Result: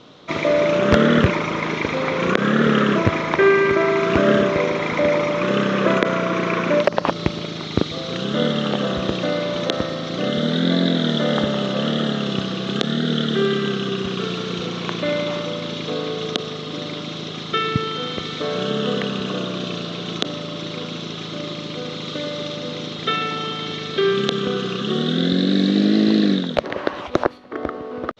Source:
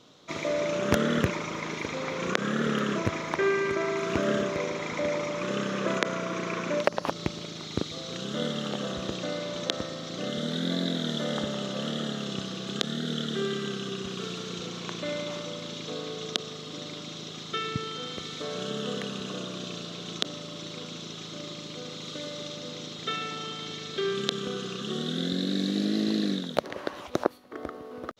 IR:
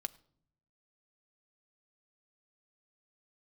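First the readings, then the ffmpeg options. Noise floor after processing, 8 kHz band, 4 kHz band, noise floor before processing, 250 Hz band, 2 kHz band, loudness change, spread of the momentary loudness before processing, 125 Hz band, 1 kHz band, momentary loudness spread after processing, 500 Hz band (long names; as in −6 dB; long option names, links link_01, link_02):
−31 dBFS, +0.5 dB, +8.0 dB, −41 dBFS, +11.0 dB, +10.0 dB, +10.0 dB, 11 LU, +11.0 dB, +10.5 dB, 12 LU, +10.5 dB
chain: -af "lowpass=3700,apsyclip=14.5dB,volume=-3.5dB"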